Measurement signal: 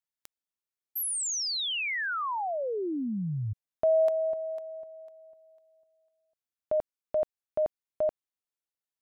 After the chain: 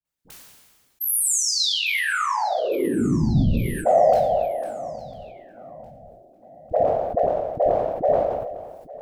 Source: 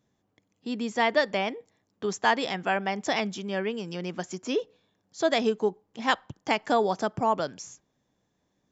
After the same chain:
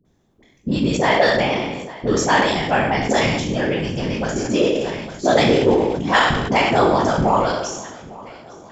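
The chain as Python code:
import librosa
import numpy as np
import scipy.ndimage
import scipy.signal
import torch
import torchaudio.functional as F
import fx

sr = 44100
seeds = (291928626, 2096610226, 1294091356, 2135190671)

p1 = fx.spec_trails(x, sr, decay_s=0.7)
p2 = fx.low_shelf(p1, sr, hz=260.0, db=8.5)
p3 = fx.dispersion(p2, sr, late='highs', ms=54.0, hz=630.0)
p4 = 10.0 ** (-17.5 / 20.0) * np.tanh(p3 / 10.0 ** (-17.5 / 20.0))
p5 = p3 + (p4 * librosa.db_to_amplitude(-5.5))
p6 = fx.whisperise(p5, sr, seeds[0])
p7 = p6 + fx.echo_feedback(p6, sr, ms=854, feedback_pct=54, wet_db=-20.5, dry=0)
p8 = fx.sustainer(p7, sr, db_per_s=37.0)
y = p8 * librosa.db_to_amplitude(1.5)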